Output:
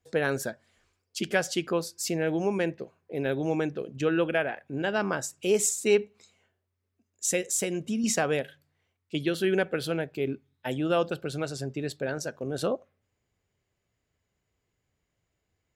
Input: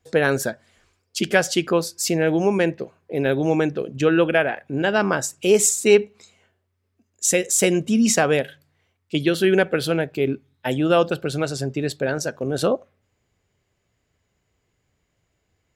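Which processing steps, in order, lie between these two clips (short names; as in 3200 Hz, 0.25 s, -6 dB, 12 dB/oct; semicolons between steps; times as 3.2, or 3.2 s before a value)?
7.57–8.04 compressor, threshold -18 dBFS, peak gain reduction 5.5 dB; gain -8 dB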